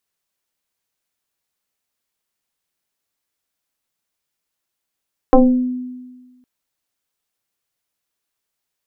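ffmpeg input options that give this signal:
ffmpeg -f lavfi -i "aevalsrc='0.631*pow(10,-3*t/1.41)*sin(2*PI*251*t+2.6*pow(10,-3*t/0.52)*sin(2*PI*1.05*251*t))':duration=1.11:sample_rate=44100" out.wav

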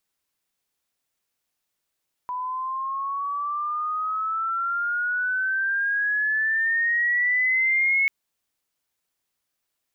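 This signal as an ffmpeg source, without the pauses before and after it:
ffmpeg -f lavfi -i "aevalsrc='pow(10,(-26.5+9*t/5.79)/20)*sin(2*PI*990*5.79/log(2200/990)*(exp(log(2200/990)*t/5.79)-1))':duration=5.79:sample_rate=44100" out.wav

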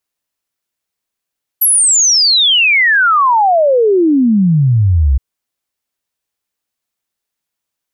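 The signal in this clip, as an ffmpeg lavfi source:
ffmpeg -f lavfi -i "aevalsrc='0.447*clip(min(t,3.57-t)/0.01,0,1)*sin(2*PI*12000*3.57/log(62/12000)*(exp(log(62/12000)*t/3.57)-1))':duration=3.57:sample_rate=44100" out.wav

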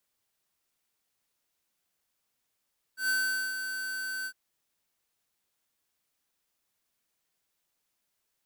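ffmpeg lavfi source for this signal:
ffmpeg -f lavfi -i "aevalsrc='0.0447*(2*lt(mod(1530*t,1),0.5)-1)':duration=1.356:sample_rate=44100,afade=type=in:duration=0.117,afade=type=out:start_time=0.117:duration=0.446:silence=0.398,afade=type=out:start_time=1.29:duration=0.066" out.wav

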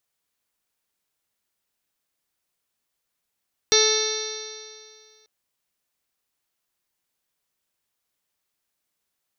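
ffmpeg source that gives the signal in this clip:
ffmpeg -f lavfi -i "aevalsrc='0.112*pow(10,-3*t/2.13)*sin(2*PI*432.3*t)+0.0224*pow(10,-3*t/2.13)*sin(2*PI*866.42*t)+0.0316*pow(10,-3*t/2.13)*sin(2*PI*1304.14*t)+0.0355*pow(10,-3*t/2.13)*sin(2*PI*1747.25*t)+0.0376*pow(10,-3*t/2.13)*sin(2*PI*2197.47*t)+0.0237*pow(10,-3*t/2.13)*sin(2*PI*2656.52*t)+0.0126*pow(10,-3*t/2.13)*sin(2*PI*3126*t)+0.0891*pow(10,-3*t/2.13)*sin(2*PI*3607.51*t)+0.0944*pow(10,-3*t/2.13)*sin(2*PI*4102.53*t)+0.0562*pow(10,-3*t/2.13)*sin(2*PI*4612.5*t)+0.0126*pow(10,-3*t/2.13)*sin(2*PI*5138.76*t)+0.126*pow(10,-3*t/2.13)*sin(2*PI*5682.57*t)+0.0316*pow(10,-3*t/2.13)*sin(2*PI*6245.13*t)':duration=1.54:sample_rate=44100" out.wav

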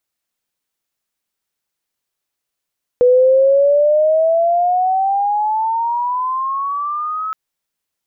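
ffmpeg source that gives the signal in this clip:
ffmpeg -f lavfi -i "aevalsrc='pow(10,(-7-12.5*t/4.32)/20)*sin(2*PI*490*4.32/log(1300/490)*(exp(log(1300/490)*t/4.32)-1))':duration=4.32:sample_rate=44100" out.wav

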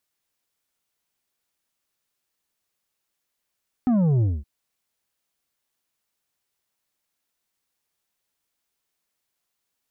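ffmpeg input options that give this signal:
ffmpeg -f lavfi -i "aevalsrc='0.133*clip((0.57-t)/0.22,0,1)*tanh(2.24*sin(2*PI*260*0.57/log(65/260)*(exp(log(65/260)*t/0.57)-1)))/tanh(2.24)':duration=0.57:sample_rate=44100" out.wav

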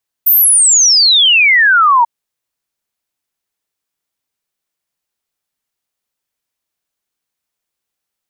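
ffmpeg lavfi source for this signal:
ffmpeg -f lavfi -i "aevalsrc='0.531*clip(min(t,1.79-t)/0.01,0,1)*sin(2*PI*15000*1.79/log(910/15000)*(exp(log(910/15000)*t/1.79)-1))':duration=1.79:sample_rate=44100" out.wav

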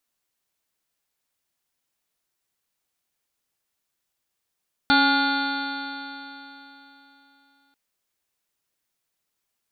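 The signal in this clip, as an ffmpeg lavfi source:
ffmpeg -f lavfi -i "aevalsrc='0.1*pow(10,-3*t/3.45)*sin(2*PI*275.43*t)+0.0141*pow(10,-3*t/3.45)*sin(2*PI*553.4*t)+0.1*pow(10,-3*t/3.45)*sin(2*PI*836.43*t)+0.02*pow(10,-3*t/3.45)*sin(2*PI*1126.95*t)+0.133*pow(10,-3*t/3.45)*sin(2*PI*1427.29*t)+0.015*pow(10,-3*t/3.45)*sin(2*PI*1739.64*t)+0.02*pow(10,-3*t/3.45)*sin(2*PI*2066.04*t)+0.0237*pow(10,-3*t/3.45)*sin(2*PI*2408.37*t)+0.0106*pow(10,-3*t/3.45)*sin(2*PI*2768.35*t)+0.0158*pow(10,-3*t/3.45)*sin(2*PI*3147.52*t)+0.0562*pow(10,-3*t/3.45)*sin(2*PI*3547.26*t)+0.0398*pow(10,-3*t/3.45)*sin(2*PI*3968.79*t)+0.0562*pow(10,-3*t/3.45)*sin(2*PI*4413.21*t)':duration=2.84:sample_rate=44100" out.wav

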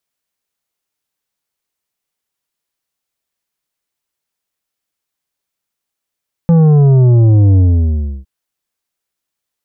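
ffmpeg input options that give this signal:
ffmpeg -f lavfi -i "aevalsrc='0.501*clip((1.76-t)/0.68,0,1)*tanh(2.66*sin(2*PI*170*1.76/log(65/170)*(exp(log(65/170)*t/1.76)-1)))/tanh(2.66)':duration=1.76:sample_rate=44100" out.wav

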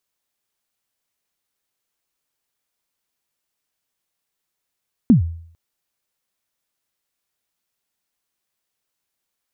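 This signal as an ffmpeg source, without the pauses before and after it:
ffmpeg -f lavfi -i "aevalsrc='0.562*pow(10,-3*t/0.59)*sin(2*PI*(270*0.119/log(83/270)*(exp(log(83/270)*min(t,0.119)/0.119)-1)+83*max(t-0.119,0)))':duration=0.45:sample_rate=44100" out.wav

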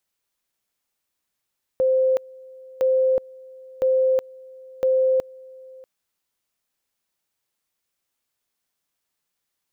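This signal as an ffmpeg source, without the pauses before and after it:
ffmpeg -f lavfi -i "aevalsrc='pow(10,(-15.5-24.5*gte(mod(t,1.01),0.37))/20)*sin(2*PI*521*t)':duration=4.04:sample_rate=44100" out.wav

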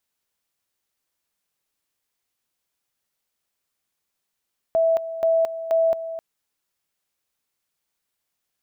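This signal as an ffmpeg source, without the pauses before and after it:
ffmpeg -f lavfi -i "aevalsrc='pow(10,(-15.5-12.5*gte(mod(t,0.48),0.22))/20)*sin(2*PI*656*t)':duration=1.44:sample_rate=44100" out.wav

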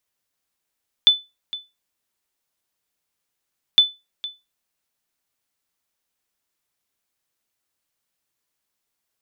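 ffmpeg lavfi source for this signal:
ffmpeg -f lavfi -i "aevalsrc='0.596*(sin(2*PI*3500*mod(t,2.71))*exp(-6.91*mod(t,2.71)/0.23)+0.133*sin(2*PI*3500*max(mod(t,2.71)-0.46,0))*exp(-6.91*max(mod(t,2.71)-0.46,0)/0.23))':duration=5.42:sample_rate=44100" out.wav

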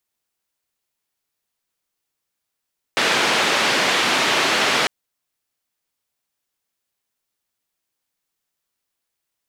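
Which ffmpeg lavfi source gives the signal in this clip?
ffmpeg -f lavfi -i "anoisesrc=color=white:duration=1.9:sample_rate=44100:seed=1,highpass=frequency=220,lowpass=frequency=3200,volume=-5.4dB" out.wav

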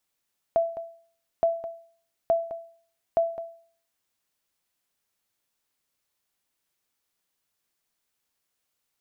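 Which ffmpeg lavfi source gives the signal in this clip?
ffmpeg -f lavfi -i "aevalsrc='0.178*(sin(2*PI*668*mod(t,0.87))*exp(-6.91*mod(t,0.87)/0.5)+0.224*sin(2*PI*668*max(mod(t,0.87)-0.21,0))*exp(-6.91*max(mod(t,0.87)-0.21,0)/0.5))':duration=3.48:sample_rate=44100" out.wav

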